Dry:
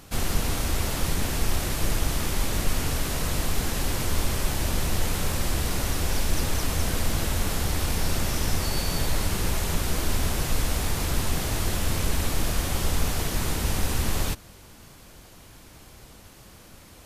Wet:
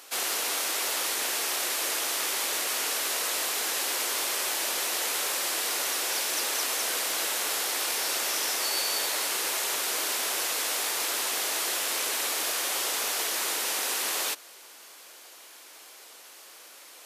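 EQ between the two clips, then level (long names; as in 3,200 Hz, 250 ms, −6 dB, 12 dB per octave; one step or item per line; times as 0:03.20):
high-pass filter 370 Hz 24 dB per octave
tilt shelving filter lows −4.5 dB
0.0 dB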